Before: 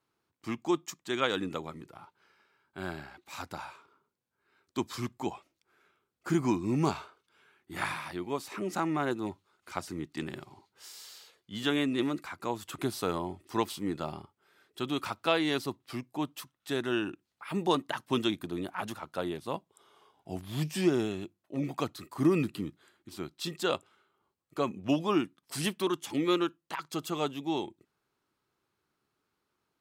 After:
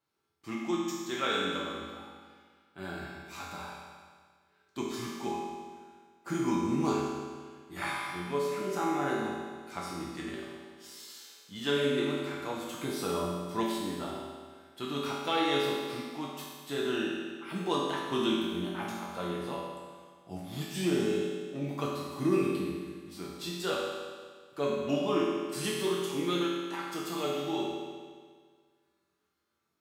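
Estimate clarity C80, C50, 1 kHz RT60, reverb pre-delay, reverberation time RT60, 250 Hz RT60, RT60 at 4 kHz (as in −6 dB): 1.5 dB, −0.5 dB, 1.7 s, 5 ms, 1.7 s, 1.7 s, 1.7 s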